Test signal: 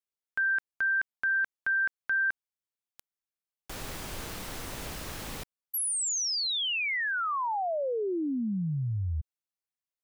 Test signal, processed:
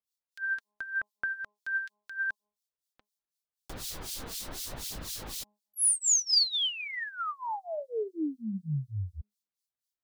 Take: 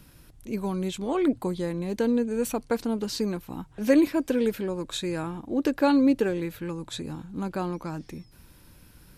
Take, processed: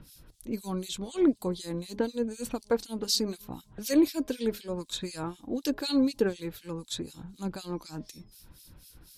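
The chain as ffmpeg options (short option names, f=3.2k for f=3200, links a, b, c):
-filter_complex "[0:a]highshelf=f=3.1k:t=q:w=1.5:g=7,bandreject=f=207.8:t=h:w=4,bandreject=f=415.6:t=h:w=4,bandreject=f=623.4:t=h:w=4,bandreject=f=831.2:t=h:w=4,bandreject=f=1.039k:t=h:w=4,acrossover=split=2400[a][b];[a]aeval=exprs='val(0)*(1-1/2+1/2*cos(2*PI*4*n/s))':c=same[c];[b]aeval=exprs='val(0)*(1-1/2-1/2*cos(2*PI*4*n/s))':c=same[d];[c][d]amix=inputs=2:normalize=0,aphaser=in_gain=1:out_gain=1:delay=4.5:decay=0.27:speed=0.81:type=triangular"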